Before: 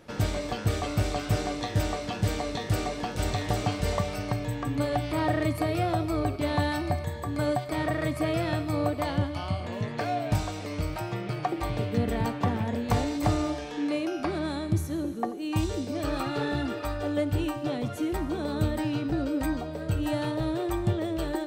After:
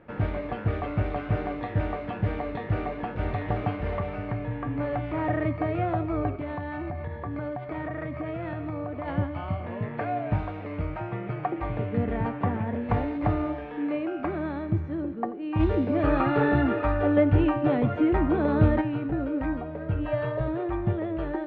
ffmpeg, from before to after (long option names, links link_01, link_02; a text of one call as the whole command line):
ffmpeg -i in.wav -filter_complex "[0:a]asettb=1/sr,asplit=3[link_01][link_02][link_03];[link_01]atrim=end=3.754[link_04];[link_02]atrim=start=3.75:end=5.29,asetpts=PTS-STARTPTS,afade=type=in:duration=0.004:curve=qsin,afade=type=out:start_time=1.536:duration=0.004:curve=qsin,asoftclip=type=hard:threshold=-24dB[link_05];[link_03]atrim=start=5.286[link_06];[link_04][link_05]acrossfade=duration=0.004:curve1=hsin:curve2=qsin[link_07];[link_07][link_06]acrossfade=duration=0.004:curve1=qsin:curve2=hsin,asettb=1/sr,asplit=3[link_08][link_09][link_10];[link_08]atrim=end=6.354[link_11];[link_09]atrim=start=6.35:end=9.08,asetpts=PTS-STARTPTS,afade=type=in:duration=0.004:curve=qsin,afade=type=out:start_time=2.726:duration=0.004:curve=qsin,acompressor=threshold=-28dB:ratio=12:attack=3.2:release=140:knee=1:detection=peak[link_12];[link_10]atrim=start=9.076[link_13];[link_11][link_12]acrossfade=duration=0.004:curve1=hsin:curve2=qsin[link_14];[link_14][link_13]acrossfade=duration=0.004:curve1=qsin:curve2=hsin,asplit=3[link_15][link_16][link_17];[link_15]afade=type=out:start_time=15.59:duration=0.02[link_18];[link_16]acontrast=81,afade=type=in:start_time=15.59:duration=0.02,afade=type=out:start_time=18.8:duration=0.02[link_19];[link_17]afade=type=in:start_time=18.8:duration=0.02[link_20];[link_18][link_19][link_20]amix=inputs=3:normalize=0,asettb=1/sr,asplit=3[link_21][link_22][link_23];[link_21]atrim=end=20.054[link_24];[link_22]atrim=start=20.05:end=20.48,asetpts=PTS-STARTPTS,afade=type=in:duration=0.004:curve=qsin,afade=type=out:start_time=0.426:duration=0.004:curve=qsin,aecho=1:1:1.8:0.73,atrim=end_sample=18963[link_25];[link_23]atrim=start=20.476[link_26];[link_24][link_25]acrossfade=duration=0.004:curve1=hsin:curve2=qsin[link_27];[link_27][link_26]acrossfade=duration=0.004:curve1=qsin:curve2=hsin,lowpass=frequency=2300:width=0.5412,lowpass=frequency=2300:width=1.3066" out.wav